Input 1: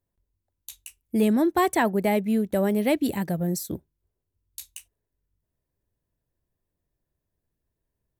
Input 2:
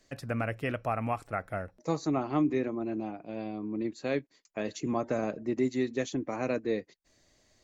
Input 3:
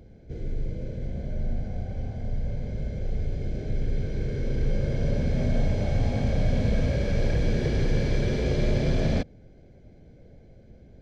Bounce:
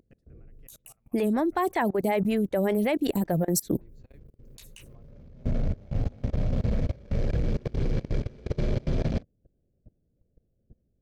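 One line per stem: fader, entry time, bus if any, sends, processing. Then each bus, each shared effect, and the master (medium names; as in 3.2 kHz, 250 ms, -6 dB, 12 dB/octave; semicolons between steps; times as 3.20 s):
0.0 dB, 0.00 s, no send, level rider gain up to 16 dB; lamp-driven phase shifter 5.3 Hz
-17.5 dB, 0.00 s, no send, compression 2:1, threshold -42 dBFS, peak gain reduction 10.5 dB
-0.5 dB, 0.00 s, no send, local Wiener filter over 41 samples; auto duck -20 dB, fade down 0.30 s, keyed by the first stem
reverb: none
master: level held to a coarse grid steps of 24 dB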